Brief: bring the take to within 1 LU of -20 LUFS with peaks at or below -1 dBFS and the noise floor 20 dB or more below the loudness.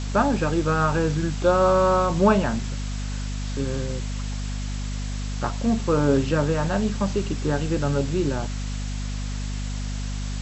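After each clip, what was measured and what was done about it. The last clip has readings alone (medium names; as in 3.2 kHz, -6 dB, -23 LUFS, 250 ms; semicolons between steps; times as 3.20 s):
hum 50 Hz; highest harmonic 250 Hz; hum level -26 dBFS; noise floor -29 dBFS; noise floor target -45 dBFS; loudness -24.5 LUFS; peak level -6.5 dBFS; loudness target -20.0 LUFS
-> de-hum 50 Hz, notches 5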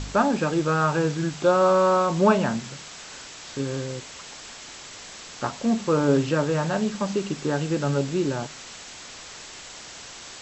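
hum not found; noise floor -42 dBFS; noise floor target -44 dBFS
-> noise reduction 6 dB, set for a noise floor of -42 dBFS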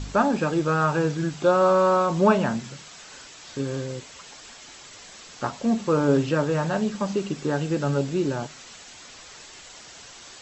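noise floor -45 dBFS; loudness -23.5 LUFS; peak level -6.0 dBFS; loudness target -20.0 LUFS
-> trim +3.5 dB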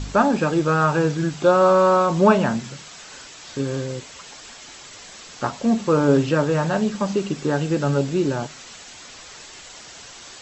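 loudness -20.0 LUFS; peak level -2.5 dBFS; noise floor -42 dBFS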